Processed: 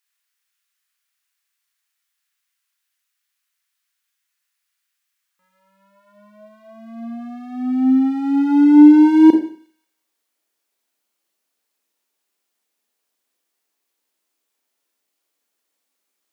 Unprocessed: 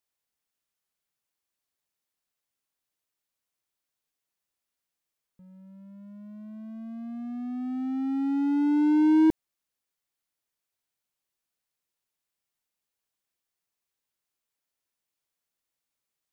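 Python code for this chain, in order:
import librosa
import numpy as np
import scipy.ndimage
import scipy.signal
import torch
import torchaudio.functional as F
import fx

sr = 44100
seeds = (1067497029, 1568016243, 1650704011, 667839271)

y = fx.filter_sweep_highpass(x, sr, from_hz=1600.0, to_hz=290.0, start_s=5.15, end_s=7.55, q=1.4)
y = fx.echo_wet_highpass(y, sr, ms=180, feedback_pct=33, hz=2400.0, wet_db=-19.5)
y = fx.rev_schroeder(y, sr, rt60_s=0.44, comb_ms=27, drr_db=3.0)
y = F.gain(torch.from_numpy(y), 8.0).numpy()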